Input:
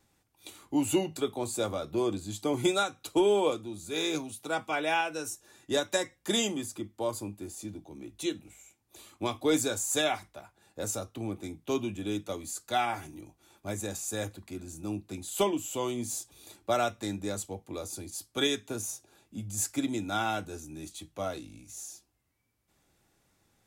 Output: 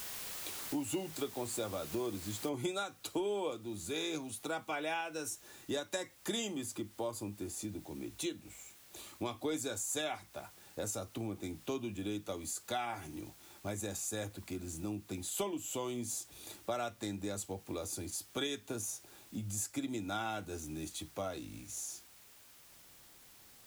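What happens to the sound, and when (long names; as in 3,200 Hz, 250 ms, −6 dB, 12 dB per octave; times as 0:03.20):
0:02.49: noise floor change −45 dB −61 dB
whole clip: downward compressor 3 to 1, threshold −39 dBFS; level +1.5 dB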